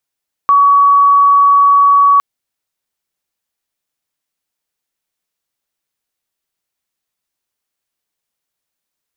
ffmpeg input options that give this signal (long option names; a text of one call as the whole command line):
ffmpeg -f lavfi -i "sine=frequency=1130:duration=1.71:sample_rate=44100,volume=13.06dB" out.wav